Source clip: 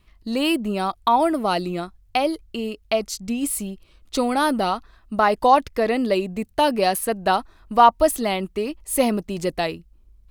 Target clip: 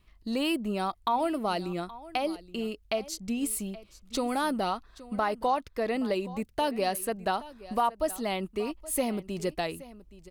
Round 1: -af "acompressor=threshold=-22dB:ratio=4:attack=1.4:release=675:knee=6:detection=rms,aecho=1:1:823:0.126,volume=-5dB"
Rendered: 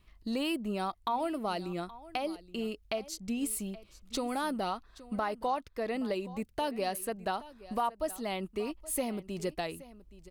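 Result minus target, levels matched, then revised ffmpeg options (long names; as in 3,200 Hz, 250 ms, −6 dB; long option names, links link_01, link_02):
downward compressor: peak gain reduction +5 dB
-af "acompressor=threshold=-15.5dB:ratio=4:attack=1.4:release=675:knee=6:detection=rms,aecho=1:1:823:0.126,volume=-5dB"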